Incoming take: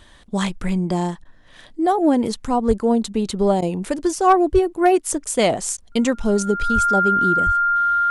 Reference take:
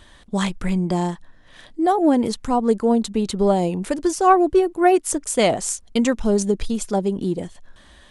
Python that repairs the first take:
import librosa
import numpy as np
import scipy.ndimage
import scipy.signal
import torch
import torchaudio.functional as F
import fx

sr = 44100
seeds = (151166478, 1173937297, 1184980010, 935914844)

y = fx.fix_declip(x, sr, threshold_db=-6.0)
y = fx.notch(y, sr, hz=1400.0, q=30.0)
y = fx.fix_deplosive(y, sr, at_s=(2.67, 4.52, 6.74, 7.45))
y = fx.fix_interpolate(y, sr, at_s=(1.24, 3.61, 5.77), length_ms=10.0)